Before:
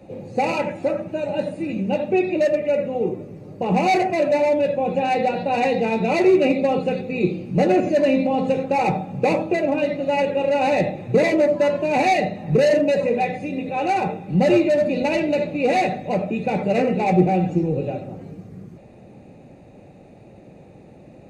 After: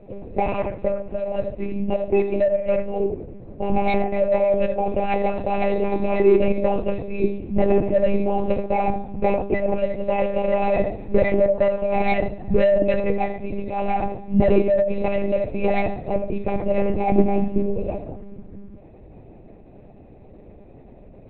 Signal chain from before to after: tilt shelf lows +4.5 dB, about 1.4 kHz; monotone LPC vocoder at 8 kHz 200 Hz; trim -3.5 dB

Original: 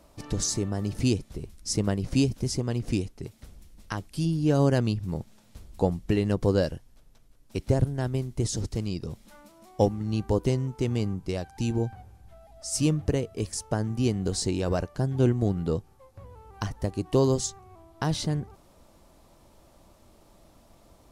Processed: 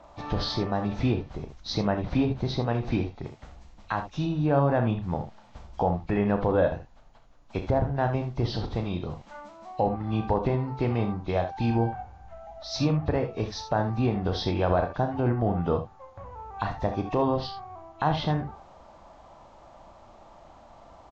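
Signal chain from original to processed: knee-point frequency compression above 2.2 kHz 1.5:1; low-pass that closes with the level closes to 2.4 kHz, closed at -19.5 dBFS; FFT filter 420 Hz 0 dB, 770 Hz +13 dB, 6 kHz -5 dB; peak limiter -14.5 dBFS, peak gain reduction 10 dB; on a send: early reflections 34 ms -9.5 dB, 64 ms -12 dB, 78 ms -12 dB

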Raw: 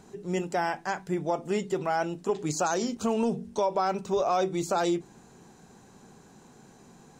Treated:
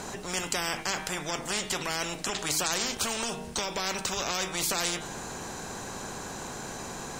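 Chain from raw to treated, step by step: de-hum 156.5 Hz, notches 26; spectrum-flattening compressor 4:1; trim +1.5 dB

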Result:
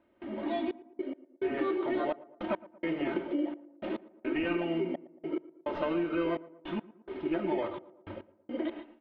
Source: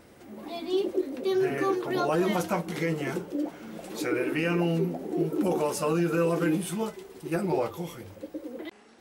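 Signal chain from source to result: high-pass 190 Hz 6 dB/octave; in parallel at -5.5 dB: sample-and-hold 17×; on the sum: gate with hold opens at -39 dBFS; steep low-pass 3.2 kHz 36 dB/octave; comb 3.2 ms, depth 65%; compression 4:1, threshold -33 dBFS, peak gain reduction 14 dB; gated-style reverb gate 160 ms rising, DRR 10.5 dB; trance gate "xxxxx..x.." 106 bpm -60 dB; on a send: tape echo 114 ms, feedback 59%, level -17.5 dB, low-pass 1.2 kHz; on the sum: trim +3 dB

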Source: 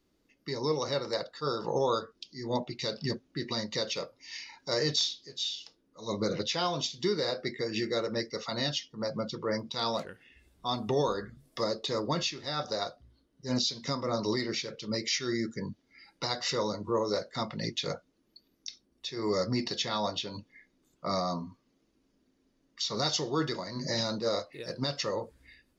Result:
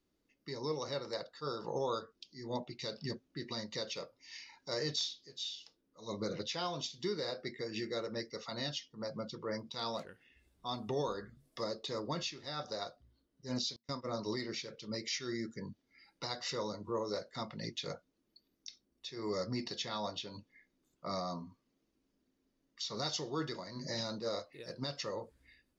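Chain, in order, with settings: 13.76–14.30 s: gate -33 dBFS, range -34 dB; trim -7.5 dB

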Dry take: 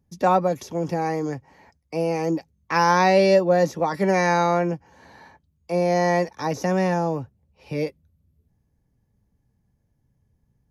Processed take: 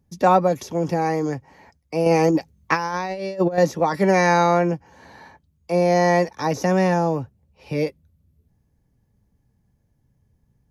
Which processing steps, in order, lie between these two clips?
2.06–3.58 s: compressor with a negative ratio -23 dBFS, ratio -0.5; trim +3 dB

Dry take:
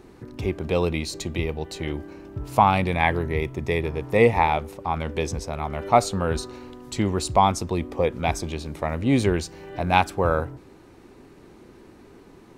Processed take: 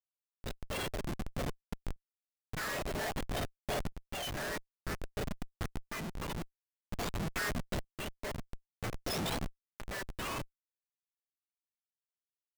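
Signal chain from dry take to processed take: spectrum inverted on a logarithmic axis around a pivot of 1.2 kHz; Schmitt trigger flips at -23.5 dBFS; tremolo saw up 0.51 Hz, depth 55%; trim -4.5 dB

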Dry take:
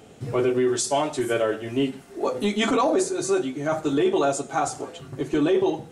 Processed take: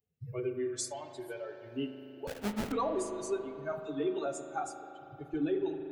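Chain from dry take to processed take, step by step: expander on every frequency bin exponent 2; de-hum 353.6 Hz, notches 25; 0.88–1.69 s: compression, threshold -31 dBFS, peak gain reduction 9.5 dB; 2.27–2.72 s: sample-rate reducer 1.1 kHz, jitter 20%; 3.72–4.26 s: phase dispersion lows, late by 63 ms, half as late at 340 Hz; spring tank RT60 3.5 s, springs 38 ms, chirp 50 ms, DRR 7 dB; trim -8.5 dB

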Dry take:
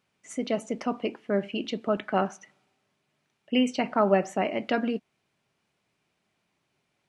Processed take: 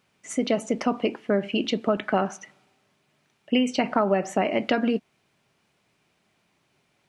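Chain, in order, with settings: compression 6:1, threshold -25 dBFS, peak gain reduction 9 dB; trim +7 dB

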